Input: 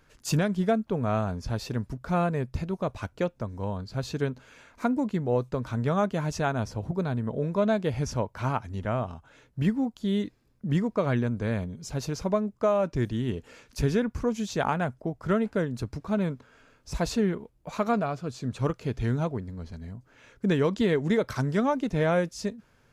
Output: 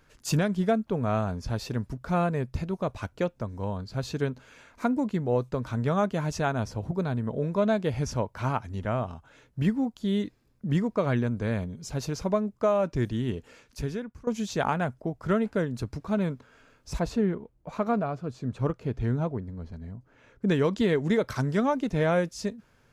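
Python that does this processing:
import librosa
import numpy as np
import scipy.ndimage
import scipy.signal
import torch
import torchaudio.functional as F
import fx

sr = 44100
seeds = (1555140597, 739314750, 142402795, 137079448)

y = fx.high_shelf(x, sr, hz=2200.0, db=-10.5, at=(16.99, 20.48))
y = fx.edit(y, sr, fx.fade_out_to(start_s=13.26, length_s=1.01, floor_db=-18.5), tone=tone)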